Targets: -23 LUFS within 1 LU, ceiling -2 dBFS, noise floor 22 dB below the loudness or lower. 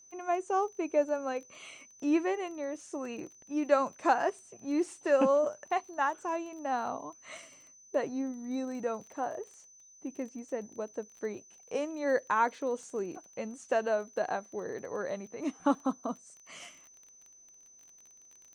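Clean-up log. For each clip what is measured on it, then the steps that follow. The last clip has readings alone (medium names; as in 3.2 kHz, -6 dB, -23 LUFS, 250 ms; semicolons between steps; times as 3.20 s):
tick rate 20 per s; steady tone 6.1 kHz; tone level -55 dBFS; loudness -33.0 LUFS; peak level -12.5 dBFS; loudness target -23.0 LUFS
-> de-click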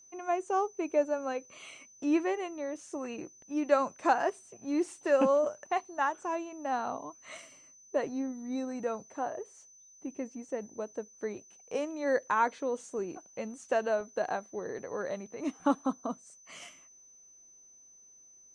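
tick rate 0 per s; steady tone 6.1 kHz; tone level -55 dBFS
-> band-stop 6.1 kHz, Q 30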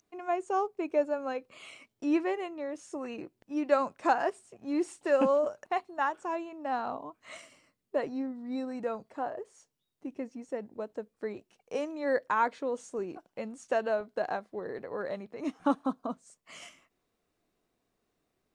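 steady tone not found; loudness -33.0 LUFS; peak level -12.5 dBFS; loudness target -23.0 LUFS
-> trim +10 dB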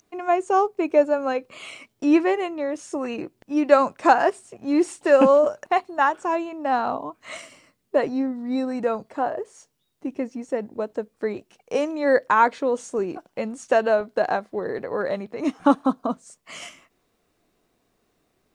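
loudness -23.0 LUFS; peak level -2.5 dBFS; noise floor -71 dBFS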